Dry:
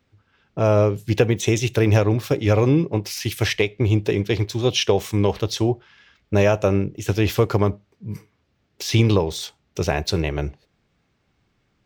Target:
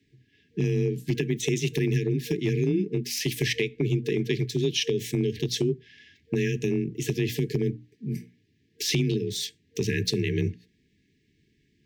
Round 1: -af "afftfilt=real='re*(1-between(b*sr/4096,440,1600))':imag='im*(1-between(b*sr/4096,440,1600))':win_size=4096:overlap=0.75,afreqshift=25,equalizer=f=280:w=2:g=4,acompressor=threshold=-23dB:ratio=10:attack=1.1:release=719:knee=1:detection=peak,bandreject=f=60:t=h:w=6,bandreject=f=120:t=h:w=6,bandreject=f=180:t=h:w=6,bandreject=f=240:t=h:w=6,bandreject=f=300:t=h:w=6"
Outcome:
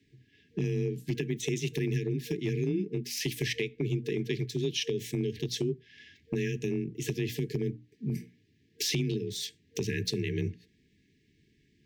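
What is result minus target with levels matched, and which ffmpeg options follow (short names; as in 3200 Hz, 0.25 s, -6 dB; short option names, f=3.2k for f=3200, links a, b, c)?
compressor: peak gain reduction +5.5 dB
-af "afftfilt=real='re*(1-between(b*sr/4096,440,1600))':imag='im*(1-between(b*sr/4096,440,1600))':win_size=4096:overlap=0.75,afreqshift=25,equalizer=f=280:w=2:g=4,acompressor=threshold=-17dB:ratio=10:attack=1.1:release=719:knee=1:detection=peak,bandreject=f=60:t=h:w=6,bandreject=f=120:t=h:w=6,bandreject=f=180:t=h:w=6,bandreject=f=240:t=h:w=6,bandreject=f=300:t=h:w=6"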